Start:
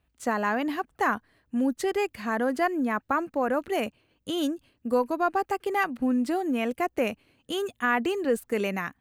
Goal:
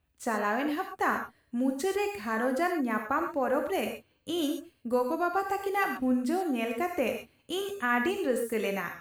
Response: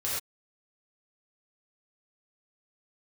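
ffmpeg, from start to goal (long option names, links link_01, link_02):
-filter_complex "[0:a]asplit=2[link_01][link_02];[1:a]atrim=start_sample=2205,highshelf=frequency=9400:gain=11.5[link_03];[link_02][link_03]afir=irnorm=-1:irlink=0,volume=-7.5dB[link_04];[link_01][link_04]amix=inputs=2:normalize=0,volume=-6dB"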